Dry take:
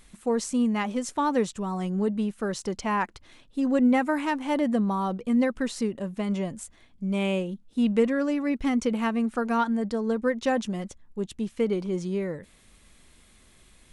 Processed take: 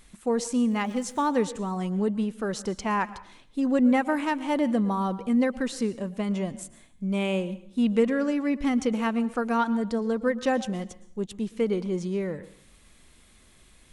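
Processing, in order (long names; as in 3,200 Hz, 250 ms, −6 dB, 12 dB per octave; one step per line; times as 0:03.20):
dense smooth reverb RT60 0.59 s, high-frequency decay 0.9×, pre-delay 100 ms, DRR 16.5 dB
0:00.67–0:01.27: surface crackle 95 per second → 440 per second −43 dBFS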